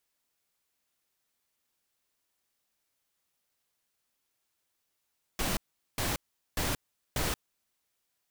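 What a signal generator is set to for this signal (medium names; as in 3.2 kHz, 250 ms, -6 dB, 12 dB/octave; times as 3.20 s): noise bursts pink, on 0.18 s, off 0.41 s, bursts 4, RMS -30.5 dBFS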